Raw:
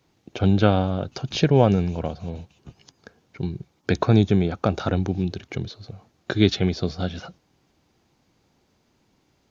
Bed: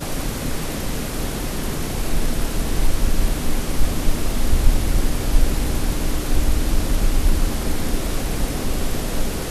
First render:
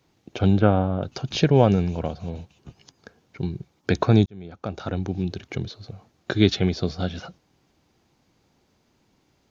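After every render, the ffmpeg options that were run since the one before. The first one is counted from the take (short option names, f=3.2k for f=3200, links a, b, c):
-filter_complex "[0:a]asplit=3[a][b][c];[a]afade=t=out:st=0.58:d=0.02[d];[b]lowpass=1.8k,afade=t=in:st=0.58:d=0.02,afade=t=out:st=1.01:d=0.02[e];[c]afade=t=in:st=1.01:d=0.02[f];[d][e][f]amix=inputs=3:normalize=0,asplit=2[g][h];[g]atrim=end=4.26,asetpts=PTS-STARTPTS,afade=t=out:st=4.256:d=0.004:c=hsin[i];[h]atrim=start=4.26,asetpts=PTS-STARTPTS,afade=t=in:d=1.18[j];[i][j]concat=n=2:v=0:a=1"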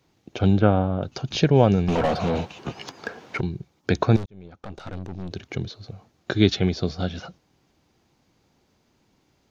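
-filter_complex "[0:a]asettb=1/sr,asplit=3[a][b][c];[a]atrim=end=1.884[d];[b]atrim=start=1.88:end=3.41,asetpts=PTS-STARTPTS,afade=t=in:d=0.004:c=qsin,afade=t=out:st=1.526:d=0.004:c=qsin,asplit=2[e][f];[f]highpass=f=720:p=1,volume=31dB,asoftclip=type=tanh:threshold=-12.5dB[g];[e][g]amix=inputs=2:normalize=0,lowpass=f=1.7k:p=1,volume=-6dB[h];[c]atrim=start=3.406[i];[d][h]acrossfade=d=0.004:c1=hsin:c2=qsin[j];[j][i]acrossfade=d=0.004:c1=qsin:c2=hsin,asettb=1/sr,asplit=3[k][l][m];[k]atrim=end=4.164[n];[l]atrim=start=4.16:end=5.31,asetpts=PTS-STARTPTS,afade=t=in:d=0.004:c=qsin,afade=t=out:st=1.146:d=0.004:c=qsin,aeval=exprs='(tanh(31.6*val(0)+0.75)-tanh(0.75))/31.6':c=same[o];[m]atrim=start=5.306[p];[n][o]acrossfade=d=0.004:c1=hsin:c2=qsin[q];[q][p]acrossfade=d=0.004:c1=qsin:c2=hsin"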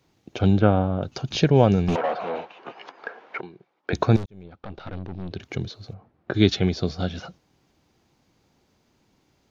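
-filter_complex "[0:a]asettb=1/sr,asplit=3[a][b][c];[a]atrim=end=1.964[d];[b]atrim=start=1.96:end=3.93,asetpts=PTS-STARTPTS,afade=t=in:d=0.004:c=qsin,afade=t=out:st=1.966:d=0.004:c=qsin,highpass=500,lowpass=2.2k[e];[c]atrim=start=3.926[f];[d][e]acrossfade=d=0.004:c1=hsin:c2=qsin[g];[g][f]acrossfade=d=0.004:c1=qsin:c2=hsin,asettb=1/sr,asplit=3[h][i][j];[h]atrim=end=4.434[k];[i]atrim=start=4.43:end=5.4,asetpts=PTS-STARTPTS,afade=t=in:d=0.004:c=qsin,afade=t=out:st=0.966:d=0.004:c=qsin,lowpass=f=4.4k:w=0.5412,lowpass=f=4.4k:w=1.3066[l];[j]atrim=start=5.396[m];[k][l]acrossfade=d=0.004:c1=hsin:c2=qsin[n];[n][m]acrossfade=d=0.004:c1=qsin:c2=hsin,asplit=3[o][p][q];[o]afade=t=out:st=5.93:d=0.02[r];[p]lowpass=1.6k,afade=t=in:st=5.93:d=0.02,afade=t=out:st=6.33:d=0.02[s];[q]afade=t=in:st=6.33:d=0.02[t];[r][s][t]amix=inputs=3:normalize=0"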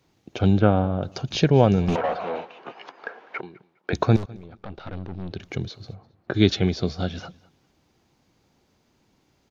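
-af "aecho=1:1:204|408:0.0668|0.016"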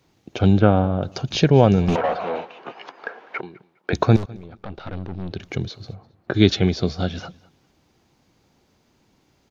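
-af "volume=3dB,alimiter=limit=-1dB:level=0:latency=1"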